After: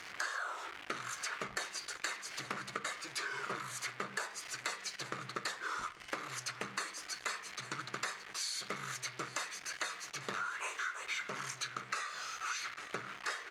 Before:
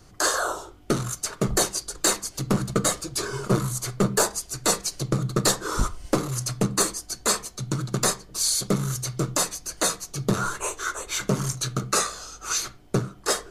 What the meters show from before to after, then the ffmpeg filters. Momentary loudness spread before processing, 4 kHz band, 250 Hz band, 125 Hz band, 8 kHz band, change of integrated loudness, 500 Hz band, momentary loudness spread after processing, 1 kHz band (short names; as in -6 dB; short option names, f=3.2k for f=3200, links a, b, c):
6 LU, -12.5 dB, -25.0 dB, -28.0 dB, -18.5 dB, -14.5 dB, -20.0 dB, 4 LU, -10.5 dB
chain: -filter_complex "[0:a]aeval=exprs='val(0)+0.5*0.02*sgn(val(0))':c=same,bandpass=f=2k:t=q:w=2:csg=0,asplit=2[a][b];[b]aecho=0:1:844:0.075[c];[a][c]amix=inputs=2:normalize=0,acompressor=threshold=-39dB:ratio=10,volume=3.5dB"